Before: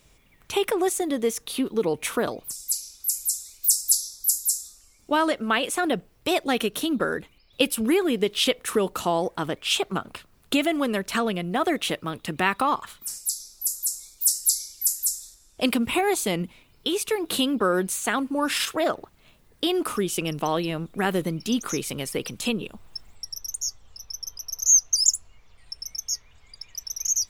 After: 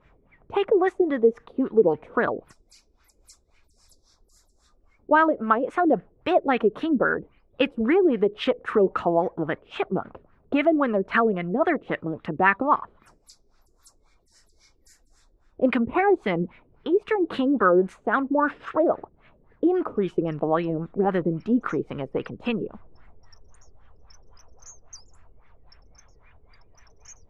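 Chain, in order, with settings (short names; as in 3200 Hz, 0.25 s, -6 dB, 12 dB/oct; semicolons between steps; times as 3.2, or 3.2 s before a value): LFO low-pass sine 3.7 Hz 390–1900 Hz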